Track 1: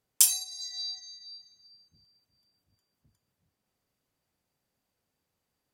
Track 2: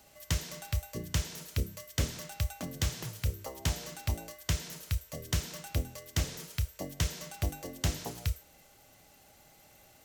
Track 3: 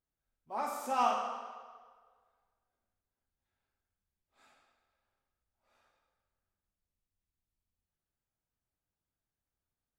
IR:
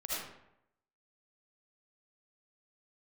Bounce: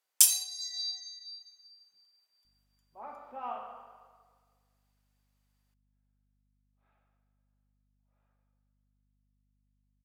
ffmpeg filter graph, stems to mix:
-filter_complex "[0:a]highpass=820,volume=-0.5dB,asplit=2[link_01][link_02];[link_02]volume=-17dB[link_03];[2:a]lowpass=frequency=3100:width=0.5412,lowpass=frequency=3100:width=1.3066,equalizer=frequency=680:width=0.48:gain=6.5,aeval=exprs='val(0)+0.00112*(sin(2*PI*50*n/s)+sin(2*PI*2*50*n/s)/2+sin(2*PI*3*50*n/s)/3+sin(2*PI*4*50*n/s)/4+sin(2*PI*5*50*n/s)/5)':channel_layout=same,adelay=2450,volume=-15dB[link_04];[3:a]atrim=start_sample=2205[link_05];[link_03][link_05]afir=irnorm=-1:irlink=0[link_06];[link_01][link_04][link_06]amix=inputs=3:normalize=0"

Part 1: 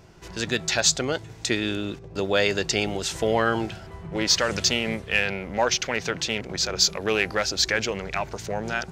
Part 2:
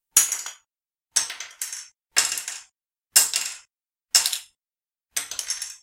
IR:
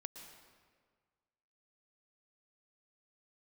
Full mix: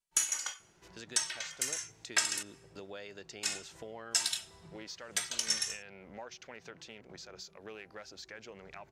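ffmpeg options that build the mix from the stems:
-filter_complex "[0:a]lowshelf=frequency=100:gain=-10.5,acompressor=threshold=-32dB:ratio=3,adynamicequalizer=threshold=0.00398:dfrequency=2200:dqfactor=0.7:tfrequency=2200:tqfactor=0.7:attack=5:release=100:ratio=0.375:range=2:mode=cutabove:tftype=highshelf,adelay=600,volume=-13.5dB[link_01];[1:a]lowpass=9100,asplit=2[link_02][link_03];[link_03]adelay=2.6,afreqshift=-0.97[link_04];[link_02][link_04]amix=inputs=2:normalize=1,volume=1dB,asplit=3[link_05][link_06][link_07];[link_05]atrim=end=2.43,asetpts=PTS-STARTPTS,afade=type=out:start_time=2.426:duration=0.004:curve=hsin[link_08];[link_06]atrim=start=2.43:end=3.43,asetpts=PTS-STARTPTS,volume=0[link_09];[link_07]atrim=start=3.43,asetpts=PTS-STARTPTS,afade=type=in:duration=0.004:curve=hsin[link_10];[link_08][link_09][link_10]concat=n=3:v=0:a=1,asplit=2[link_11][link_12];[link_12]volume=-18.5dB[link_13];[2:a]atrim=start_sample=2205[link_14];[link_13][link_14]afir=irnorm=-1:irlink=0[link_15];[link_01][link_11][link_15]amix=inputs=3:normalize=0,alimiter=limit=-15dB:level=0:latency=1:release=413"

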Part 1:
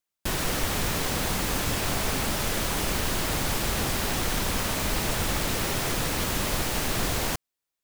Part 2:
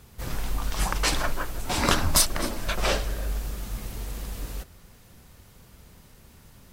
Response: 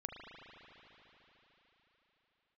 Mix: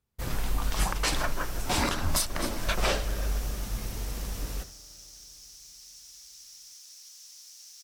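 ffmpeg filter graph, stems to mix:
-filter_complex "[0:a]bandpass=frequency=5600:width_type=q:width=5.2:csg=0,aemphasis=mode=production:type=bsi,adelay=850,volume=-15dB[link_01];[1:a]agate=range=-30dB:threshold=-42dB:ratio=16:detection=peak,volume=-1dB,asplit=2[link_02][link_03];[link_03]volume=-13.5dB[link_04];[2:a]atrim=start_sample=2205[link_05];[link_04][link_05]afir=irnorm=-1:irlink=0[link_06];[link_01][link_02][link_06]amix=inputs=3:normalize=0,alimiter=limit=-15dB:level=0:latency=1:release=288"

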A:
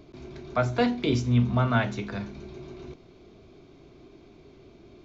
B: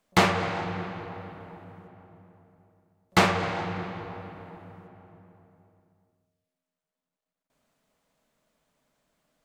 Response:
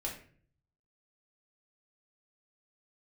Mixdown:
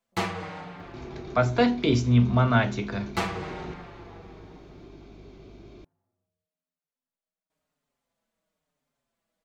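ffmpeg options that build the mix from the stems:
-filter_complex "[0:a]aeval=exprs='val(0)+0.00224*(sin(2*PI*50*n/s)+sin(2*PI*2*50*n/s)/2+sin(2*PI*3*50*n/s)/3+sin(2*PI*4*50*n/s)/4+sin(2*PI*5*50*n/s)/5)':channel_layout=same,adelay=800,volume=2.5dB[link_01];[1:a]asplit=2[link_02][link_03];[link_03]adelay=5.4,afreqshift=-0.99[link_04];[link_02][link_04]amix=inputs=2:normalize=1,volume=-5.5dB[link_05];[link_01][link_05]amix=inputs=2:normalize=0"

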